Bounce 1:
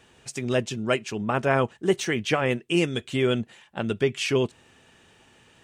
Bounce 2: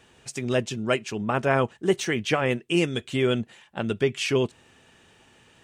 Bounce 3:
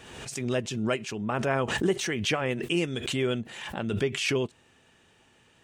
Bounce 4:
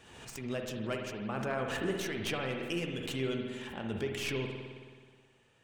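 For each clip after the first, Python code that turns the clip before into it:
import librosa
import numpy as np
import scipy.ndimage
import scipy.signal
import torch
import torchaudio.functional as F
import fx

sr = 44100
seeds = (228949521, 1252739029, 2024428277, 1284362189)

y1 = x
y2 = fx.pre_swell(y1, sr, db_per_s=45.0)
y2 = F.gain(torch.from_numpy(y2), -5.0).numpy()
y3 = fx.tracing_dist(y2, sr, depth_ms=0.064)
y3 = fx.rev_spring(y3, sr, rt60_s=1.7, pass_ms=(53,), chirp_ms=30, drr_db=2.5)
y3 = F.gain(torch.from_numpy(y3), -9.0).numpy()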